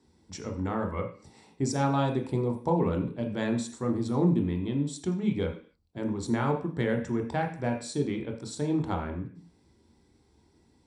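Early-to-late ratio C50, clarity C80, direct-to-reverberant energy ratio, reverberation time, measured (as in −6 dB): 8.0 dB, 13.5 dB, 2.5 dB, 0.45 s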